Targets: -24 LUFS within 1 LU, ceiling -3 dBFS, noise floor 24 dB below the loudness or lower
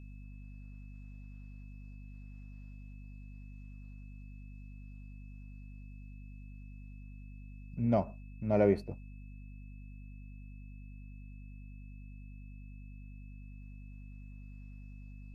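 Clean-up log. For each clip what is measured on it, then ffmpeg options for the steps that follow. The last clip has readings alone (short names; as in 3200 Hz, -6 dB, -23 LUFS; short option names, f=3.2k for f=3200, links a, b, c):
hum 50 Hz; harmonics up to 250 Hz; hum level -46 dBFS; steady tone 2600 Hz; tone level -65 dBFS; loudness -41.5 LUFS; peak -14.5 dBFS; loudness target -24.0 LUFS
-> -af "bandreject=f=50:t=h:w=6,bandreject=f=100:t=h:w=6,bandreject=f=150:t=h:w=6,bandreject=f=200:t=h:w=6,bandreject=f=250:t=h:w=6"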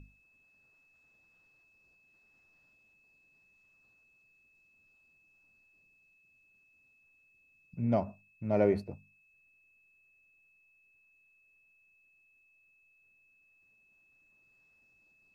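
hum none; steady tone 2600 Hz; tone level -65 dBFS
-> -af "bandreject=f=2.6k:w=30"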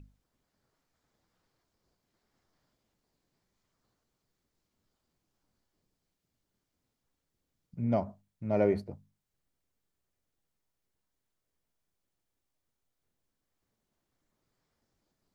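steady tone none; loudness -31.0 LUFS; peak -15.5 dBFS; loudness target -24.0 LUFS
-> -af "volume=7dB"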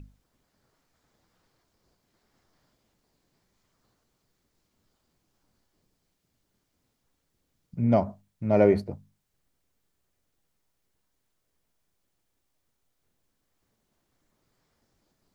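loudness -24.5 LUFS; peak -8.5 dBFS; noise floor -77 dBFS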